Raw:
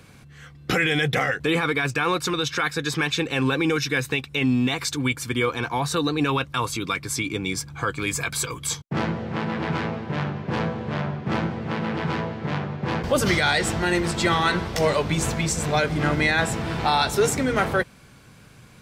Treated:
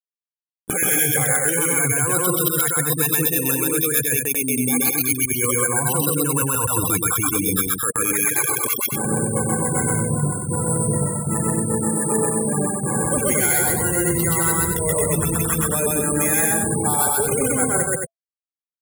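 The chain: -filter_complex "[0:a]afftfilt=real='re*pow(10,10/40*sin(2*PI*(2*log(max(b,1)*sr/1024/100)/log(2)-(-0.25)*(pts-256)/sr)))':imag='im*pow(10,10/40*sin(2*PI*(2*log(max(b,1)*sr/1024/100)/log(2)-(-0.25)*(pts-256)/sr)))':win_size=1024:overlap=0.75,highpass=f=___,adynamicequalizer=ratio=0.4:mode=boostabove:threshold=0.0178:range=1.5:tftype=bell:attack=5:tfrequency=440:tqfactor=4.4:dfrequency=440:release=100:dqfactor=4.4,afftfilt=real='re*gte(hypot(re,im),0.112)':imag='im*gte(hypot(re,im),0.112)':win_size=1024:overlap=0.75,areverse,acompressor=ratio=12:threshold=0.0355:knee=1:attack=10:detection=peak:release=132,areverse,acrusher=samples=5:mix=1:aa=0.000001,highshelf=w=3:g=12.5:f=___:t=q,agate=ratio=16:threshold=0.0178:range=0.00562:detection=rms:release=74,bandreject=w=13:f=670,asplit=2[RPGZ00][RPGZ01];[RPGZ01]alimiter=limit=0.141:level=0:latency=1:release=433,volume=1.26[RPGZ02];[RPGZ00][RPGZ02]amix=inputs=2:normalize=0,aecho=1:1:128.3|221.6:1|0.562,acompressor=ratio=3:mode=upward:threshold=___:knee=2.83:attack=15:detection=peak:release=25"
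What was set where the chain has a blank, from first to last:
58, 7000, 0.0251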